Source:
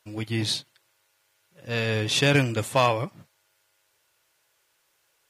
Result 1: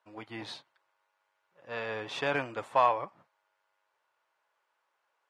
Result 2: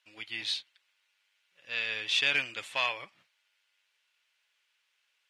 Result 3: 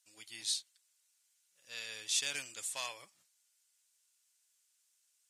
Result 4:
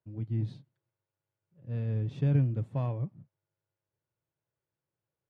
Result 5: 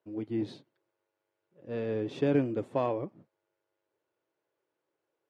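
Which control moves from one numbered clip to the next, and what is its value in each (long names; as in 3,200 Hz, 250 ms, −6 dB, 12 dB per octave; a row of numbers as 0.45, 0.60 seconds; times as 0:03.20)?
resonant band-pass, frequency: 960, 2,700, 7,900, 130, 340 Hertz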